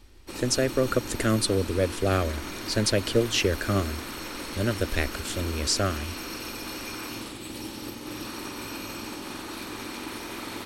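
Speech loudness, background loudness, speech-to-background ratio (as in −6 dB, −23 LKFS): −26.5 LKFS, −35.5 LKFS, 9.0 dB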